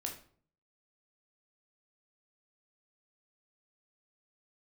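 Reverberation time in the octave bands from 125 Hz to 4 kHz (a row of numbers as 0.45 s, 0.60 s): 0.75 s, 0.60 s, 0.55 s, 0.45 s, 0.40 s, 0.35 s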